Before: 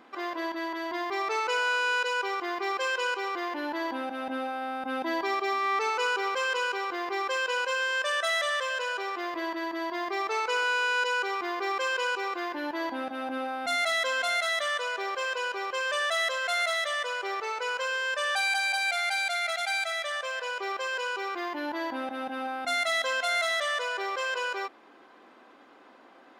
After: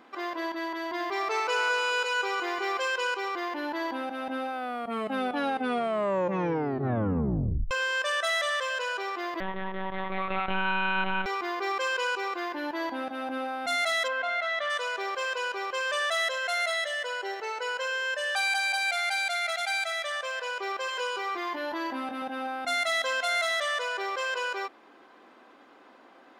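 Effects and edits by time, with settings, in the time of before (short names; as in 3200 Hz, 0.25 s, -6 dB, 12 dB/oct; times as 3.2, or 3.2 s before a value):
0.78–2.8 thinning echo 0.215 s, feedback 58%, high-pass 210 Hz, level -9 dB
4.51 tape stop 3.20 s
9.4–11.26 monotone LPC vocoder at 8 kHz 190 Hz
14.07–14.69 LPF 1800 Hz -> 3100 Hz
16.28–18.35 notch comb 1200 Hz
20.86–22.22 doubler 22 ms -5 dB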